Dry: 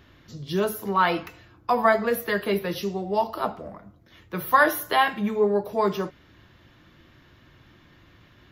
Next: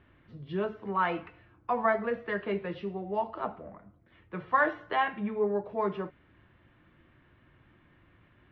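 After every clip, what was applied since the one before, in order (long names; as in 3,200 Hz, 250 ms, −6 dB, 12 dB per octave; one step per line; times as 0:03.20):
low-pass filter 2,700 Hz 24 dB per octave
level −7 dB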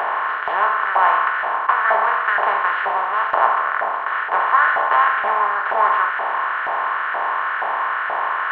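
compressor on every frequency bin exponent 0.2
auto-filter high-pass saw up 2.1 Hz 750–1,500 Hz
bass and treble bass +1 dB, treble −5 dB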